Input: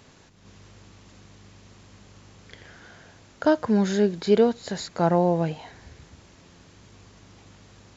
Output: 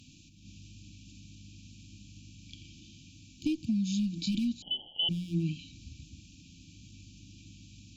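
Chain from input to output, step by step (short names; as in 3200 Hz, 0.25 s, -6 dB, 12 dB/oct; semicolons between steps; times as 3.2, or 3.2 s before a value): one-sided clip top -16.5 dBFS, bottom -13.5 dBFS; FFT band-reject 340–2300 Hz; compressor, threshold -27 dBFS, peak gain reduction 8 dB; 4.62–5.09 inverted band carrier 3200 Hz; de-hum 177.4 Hz, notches 7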